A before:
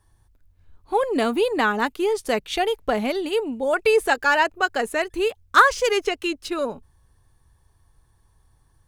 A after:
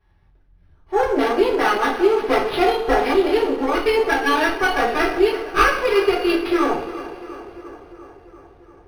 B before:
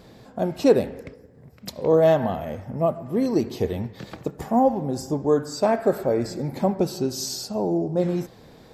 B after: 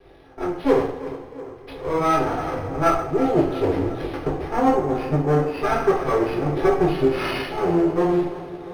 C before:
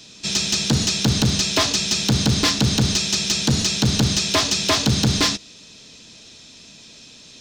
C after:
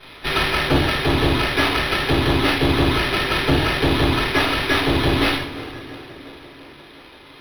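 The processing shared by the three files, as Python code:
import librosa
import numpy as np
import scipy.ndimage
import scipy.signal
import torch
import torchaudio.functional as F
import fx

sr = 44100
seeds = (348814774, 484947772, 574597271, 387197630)

y = fx.lower_of_two(x, sr, delay_ms=2.5)
y = fx.high_shelf(y, sr, hz=7900.0, db=-8.5)
y = fx.rider(y, sr, range_db=4, speed_s=0.5)
y = fx.echo_tape(y, sr, ms=347, feedback_pct=73, wet_db=-14.5, lp_hz=2700.0, drive_db=3.0, wow_cents=8)
y = fx.rev_double_slope(y, sr, seeds[0], early_s=0.45, late_s=3.6, knee_db=-22, drr_db=-9.0)
y = np.interp(np.arange(len(y)), np.arange(len(y))[::6], y[::6])
y = F.gain(torch.from_numpy(y), -3.5).numpy()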